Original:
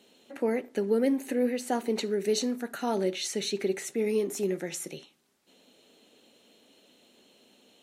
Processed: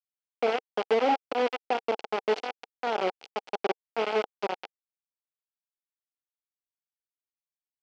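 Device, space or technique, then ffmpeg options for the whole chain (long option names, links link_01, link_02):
hand-held game console: -af "acrusher=bits=3:mix=0:aa=0.000001,highpass=420,equalizer=frequency=460:width_type=q:width=4:gain=4,equalizer=frequency=800:width_type=q:width=4:gain=8,equalizer=frequency=1100:width_type=q:width=4:gain=-7,equalizer=frequency=1800:width_type=q:width=4:gain=-7,equalizer=frequency=3800:width_type=q:width=4:gain=-8,lowpass=frequency=4000:width=0.5412,lowpass=frequency=4000:width=1.3066"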